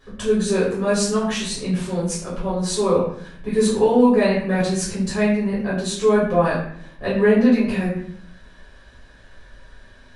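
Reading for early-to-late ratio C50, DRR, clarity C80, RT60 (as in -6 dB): 3.5 dB, -9.0 dB, 6.5 dB, 0.60 s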